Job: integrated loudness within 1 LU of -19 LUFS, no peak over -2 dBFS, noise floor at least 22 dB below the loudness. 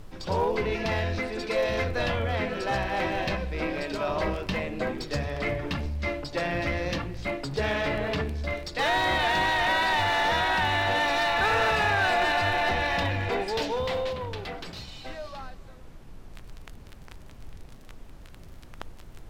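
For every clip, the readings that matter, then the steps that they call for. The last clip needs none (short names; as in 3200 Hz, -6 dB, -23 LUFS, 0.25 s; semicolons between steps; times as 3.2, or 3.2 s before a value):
clipped 0.3%; flat tops at -18.0 dBFS; noise floor -46 dBFS; noise floor target -49 dBFS; loudness -27.0 LUFS; peak -18.0 dBFS; loudness target -19.0 LUFS
-> clip repair -18 dBFS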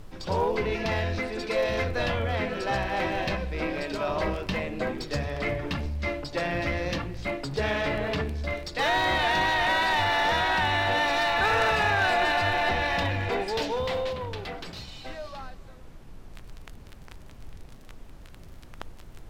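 clipped 0.0%; noise floor -46 dBFS; noise floor target -49 dBFS
-> noise print and reduce 6 dB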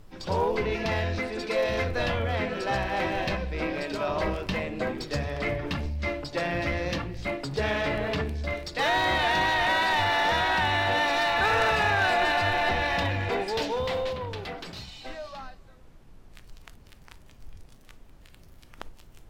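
noise floor -52 dBFS; loudness -26.5 LUFS; peak -10.5 dBFS; loudness target -19.0 LUFS
-> gain +7.5 dB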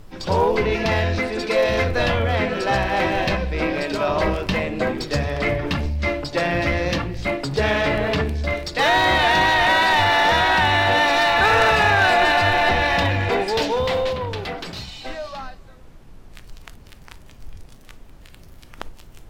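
loudness -19.0 LUFS; peak -3.0 dBFS; noise floor -44 dBFS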